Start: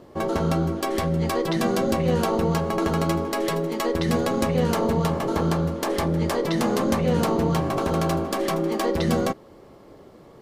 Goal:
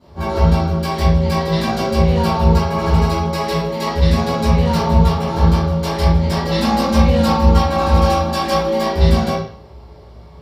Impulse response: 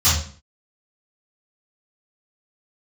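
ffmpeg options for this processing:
-filter_complex "[0:a]asettb=1/sr,asplit=3[a][b][c];[a]atrim=end=6.414[d];[b]atrim=start=6.41:end=8.8,asetpts=PTS-STARTPTS,afade=t=in:d=0.004:c=qsin,afade=t=out:st=2.386:d=0.004:c=qsin,aecho=1:1:3.7:0.86,atrim=end_sample=105399[e];[c]atrim=start=8.796[f];[d][e]acrossfade=d=0.004:c1=hsin:c2=qsin[g];[g][f]acrossfade=d=0.004:c1=qsin:c2=hsin[h];[1:a]atrim=start_sample=2205,asetrate=34398,aresample=44100[i];[h][i]afir=irnorm=-1:irlink=0,volume=-16.5dB"

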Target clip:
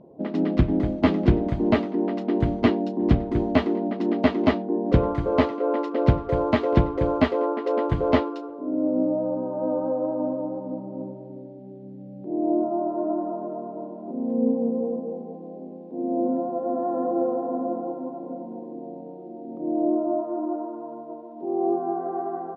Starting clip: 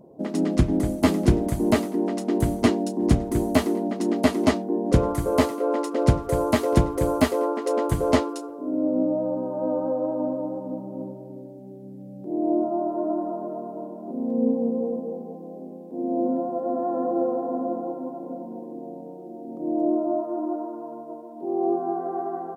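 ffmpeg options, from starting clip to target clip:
-af "lowpass=f=3.7k:w=0.5412,lowpass=f=3.7k:w=1.3066"

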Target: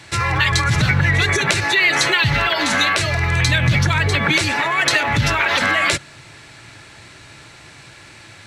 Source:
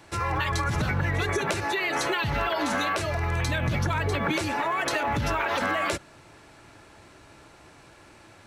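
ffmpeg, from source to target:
-af "equalizer=f=125:t=o:w=1:g=10,equalizer=f=2k:t=o:w=1:g=9,equalizer=f=4k:t=o:w=1:g=9,equalizer=f=8k:t=o:w=1:g=8,volume=3dB"

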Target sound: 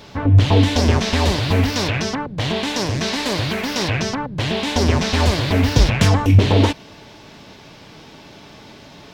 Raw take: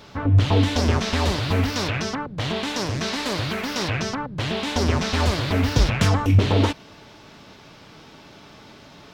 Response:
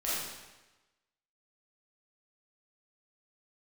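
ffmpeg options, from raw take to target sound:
-af "equalizer=f=1.3k:w=4.1:g=-5.5,volume=4.5dB"

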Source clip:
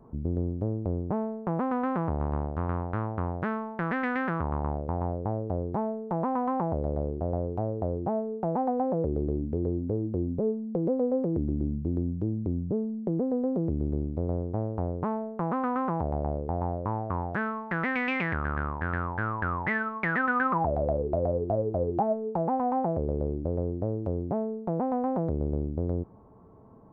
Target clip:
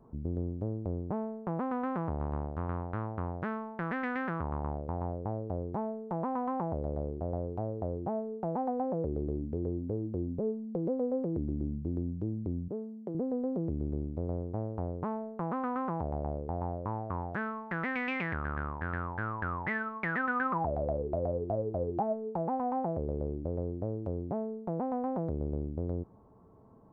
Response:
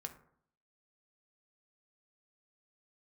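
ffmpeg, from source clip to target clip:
-filter_complex "[0:a]asettb=1/sr,asplit=3[a][b][c];[a]atrim=end=12.684[d];[b]atrim=start=12.68:end=13.15,asetpts=PTS-STARTPTS,afade=t=in:d=0.004:c=qsin,afade=t=out:st=0.466:d=0.004:c=qsin,highpass=f=360:p=1[e];[c]atrim=start=13.146[f];[d][e]acrossfade=d=0.004:c1=hsin:c2=qsin[g];[g][f]acrossfade=d=0.004:c1=qsin:c2=hsin,volume=-5dB"

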